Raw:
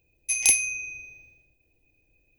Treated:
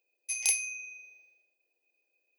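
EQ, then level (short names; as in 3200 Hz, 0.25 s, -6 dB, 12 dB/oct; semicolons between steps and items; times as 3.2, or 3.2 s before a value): HPF 430 Hz 24 dB/oct; bell 4700 Hz +7 dB 0.21 oct; -8.0 dB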